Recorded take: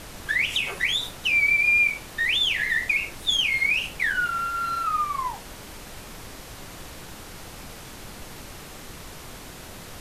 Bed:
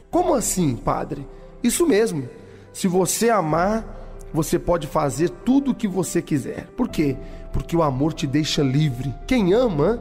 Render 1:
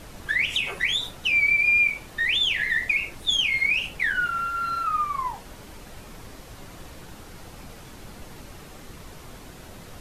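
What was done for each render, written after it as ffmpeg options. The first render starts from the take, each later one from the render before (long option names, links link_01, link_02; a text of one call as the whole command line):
ffmpeg -i in.wav -af "afftdn=noise_reduction=6:noise_floor=-42" out.wav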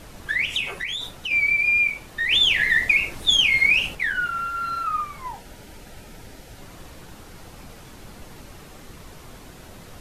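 ffmpeg -i in.wav -filter_complex "[0:a]asettb=1/sr,asplit=3[link_01][link_02][link_03];[link_01]atrim=end=0.684[link_04];[link_02]atrim=start=0.68:end=1.31,asetpts=PTS-STARTPTS,afade=type=in:duration=0.004:curve=qsin,afade=type=out:start_time=0.626:duration=0.004:curve=qsin,acompressor=threshold=-25dB:ratio=6:attack=3.2:release=140:knee=1:detection=peak[link_05];[link_03]atrim=start=1.306[link_06];[link_04][link_05]acrossfade=duration=0.004:curve1=hsin:curve2=qsin[link_07];[link_07][link_06]acrossfade=duration=0.004:curve1=qsin:curve2=hsin,asettb=1/sr,asplit=3[link_08][link_09][link_10];[link_08]atrim=end=5.004[link_11];[link_09]atrim=start=5:end=6.62,asetpts=PTS-STARTPTS,afade=type=in:duration=0.004:curve=qsin,afade=type=out:start_time=1.616:duration=0.004:curve=qsin,asuperstop=centerf=1100:order=4:qfactor=5[link_12];[link_10]atrim=start=6.616[link_13];[link_11][link_12]acrossfade=duration=0.004:curve1=hsin:curve2=qsin[link_14];[link_14][link_13]acrossfade=duration=0.004:curve1=qsin:curve2=hsin,asplit=3[link_15][link_16][link_17];[link_15]atrim=end=2.312[link_18];[link_16]atrim=start=2.308:end=3.952,asetpts=PTS-STARTPTS,volume=5dB[link_19];[link_17]atrim=start=3.948[link_20];[link_18][link_19]acrossfade=duration=0.004:curve1=hsin:curve2=hsin[link_21];[link_21][link_20]acrossfade=duration=0.004:curve1=hsin:curve2=hsin" out.wav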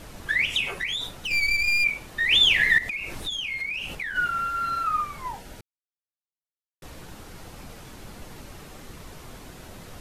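ffmpeg -i in.wav -filter_complex "[0:a]asplit=3[link_01][link_02][link_03];[link_01]afade=type=out:start_time=1.11:duration=0.02[link_04];[link_02]aeval=exprs='clip(val(0),-1,0.0316)':channel_layout=same,afade=type=in:start_time=1.11:duration=0.02,afade=type=out:start_time=1.83:duration=0.02[link_05];[link_03]afade=type=in:start_time=1.83:duration=0.02[link_06];[link_04][link_05][link_06]amix=inputs=3:normalize=0,asettb=1/sr,asplit=3[link_07][link_08][link_09];[link_07]atrim=end=2.784[link_10];[link_08]atrim=start=2.78:end=4.16,asetpts=PTS-STARTPTS,afade=type=in:duration=0.004:curve=qsin,afade=type=out:start_time=1.376:duration=0.004:curve=qsin,acompressor=threshold=-28dB:ratio=8:attack=3.2:release=140:knee=1:detection=peak[link_11];[link_09]atrim=start=4.156[link_12];[link_10][link_11]acrossfade=duration=0.004:curve1=hsin:curve2=qsin[link_13];[link_13][link_12]acrossfade=duration=0.004:curve1=qsin:curve2=hsin,asplit=3[link_14][link_15][link_16];[link_14]atrim=end=5.61,asetpts=PTS-STARTPTS,afade=type=out:start_time=5.606:duration=0.004:curve=hsin[link_17];[link_15]atrim=start=5.61:end=6.82,asetpts=PTS-STARTPTS,volume=0[link_18];[link_16]atrim=start=6.82,asetpts=PTS-STARTPTS,afade=type=in:duration=0.004:curve=hsin[link_19];[link_17][link_18][link_19]concat=n=3:v=0:a=1" out.wav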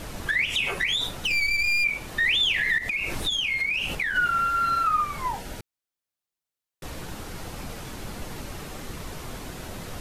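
ffmpeg -i in.wav -filter_complex "[0:a]asplit=2[link_01][link_02];[link_02]acompressor=threshold=-31dB:ratio=6,volume=0dB[link_03];[link_01][link_03]amix=inputs=2:normalize=0,alimiter=limit=-15.5dB:level=0:latency=1:release=80" out.wav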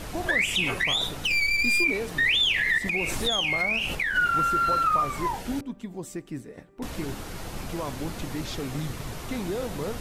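ffmpeg -i in.wav -i bed.wav -filter_complex "[1:a]volume=-14dB[link_01];[0:a][link_01]amix=inputs=2:normalize=0" out.wav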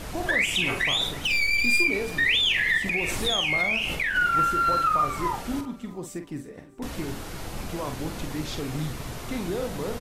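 ffmpeg -i in.wav -filter_complex "[0:a]asplit=2[link_01][link_02];[link_02]adelay=46,volume=-8dB[link_03];[link_01][link_03]amix=inputs=2:normalize=0,aecho=1:1:328|656|984:0.1|0.039|0.0152" out.wav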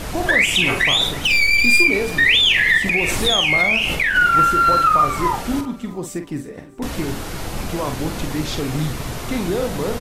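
ffmpeg -i in.wav -af "volume=8dB" out.wav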